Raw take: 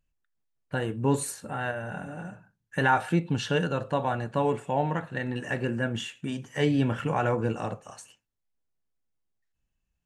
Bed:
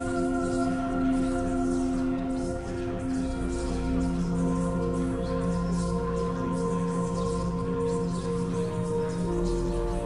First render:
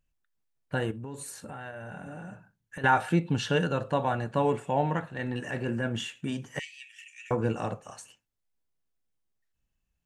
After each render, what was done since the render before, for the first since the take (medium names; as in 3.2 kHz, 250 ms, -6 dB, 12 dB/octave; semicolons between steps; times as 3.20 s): 0.91–2.84 s: compression 5:1, threshold -37 dBFS; 5.00–5.99 s: transient shaper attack -8 dB, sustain -1 dB; 6.59–7.31 s: rippled Chebyshev high-pass 1.8 kHz, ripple 9 dB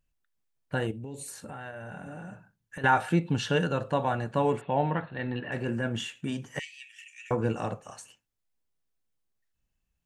0.87–1.28 s: high-order bell 1.3 kHz -13.5 dB 1.1 oct; 4.61–5.52 s: brick-wall FIR low-pass 4.5 kHz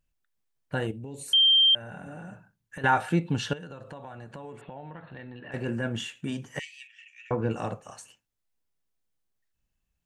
1.33–1.75 s: bleep 3.16 kHz -16 dBFS; 3.53–5.54 s: compression, threshold -39 dBFS; 6.87–7.51 s: distance through air 160 m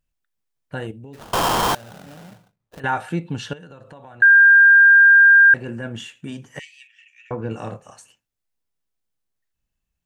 1.13–2.80 s: sample-rate reducer 2.2 kHz, jitter 20%; 4.22–5.54 s: bleep 1.6 kHz -7 dBFS; 7.49–7.90 s: doubling 27 ms -6.5 dB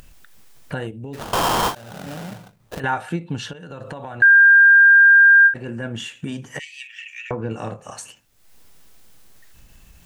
upward compressor, threshold -22 dBFS; endings held to a fixed fall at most 230 dB/s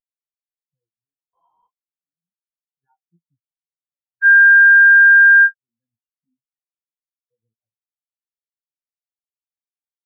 in parallel at -2.5 dB: peak limiter -15.5 dBFS, peak gain reduction 8.5 dB; on the sum: spectral contrast expander 4:1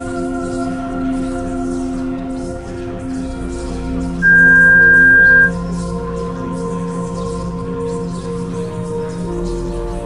add bed +6.5 dB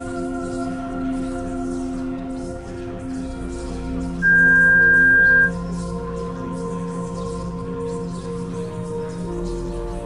trim -5.5 dB